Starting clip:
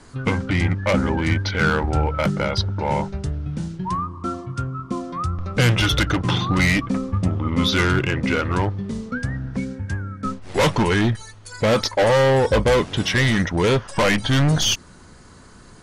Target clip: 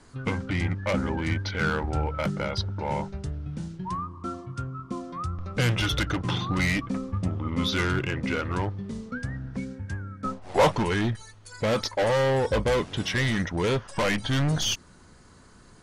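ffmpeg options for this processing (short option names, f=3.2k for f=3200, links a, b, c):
-filter_complex "[0:a]asettb=1/sr,asplit=3[a][b][c];[a]atrim=end=10.244[d];[b]atrim=start=10.24:end=10.72,asetpts=PTS-STARTPTS,afade=t=in:d=0.004:c=qsin,afade=t=out:st=0.476:d=0.004:c=qsin,equalizer=f=730:w=1.3:g=11.5[e];[c]atrim=start=10.716[f];[d][e]acrossfade=d=0.004:c1=hsin:c2=qsin[g];[g][f]acrossfade=d=0.004:c1=qsin:c2=hsin,volume=-7dB"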